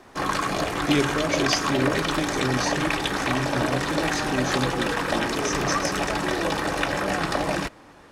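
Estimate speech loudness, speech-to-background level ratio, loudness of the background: -29.0 LUFS, -4.0 dB, -25.0 LUFS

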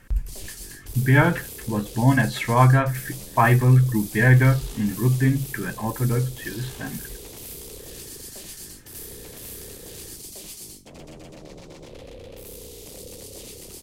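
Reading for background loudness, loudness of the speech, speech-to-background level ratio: -38.0 LUFS, -21.0 LUFS, 17.0 dB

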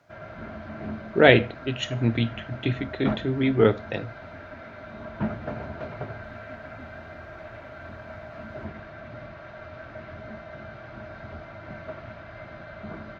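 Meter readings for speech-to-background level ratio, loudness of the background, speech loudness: 15.5 dB, -38.5 LUFS, -23.0 LUFS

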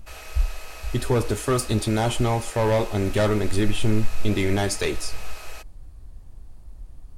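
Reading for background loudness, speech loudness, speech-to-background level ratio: -40.0 LUFS, -24.5 LUFS, 15.5 dB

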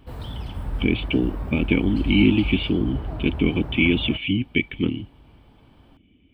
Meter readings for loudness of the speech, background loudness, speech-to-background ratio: -22.5 LUFS, -32.0 LUFS, 9.5 dB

